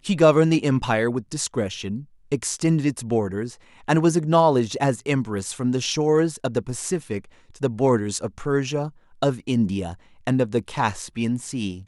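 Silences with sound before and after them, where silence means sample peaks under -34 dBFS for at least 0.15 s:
2.03–2.32 s
3.53–3.88 s
7.24–7.54 s
8.89–9.22 s
9.94–10.27 s

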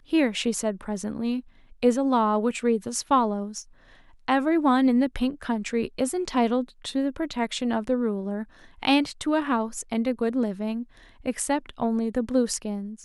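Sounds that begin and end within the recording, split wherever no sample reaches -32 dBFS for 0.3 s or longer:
1.83–3.60 s
4.28–8.43 s
8.83–10.83 s

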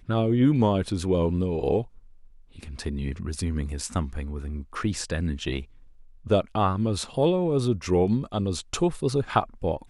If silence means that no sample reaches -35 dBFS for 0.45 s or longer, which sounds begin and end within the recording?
2.59–5.63 s

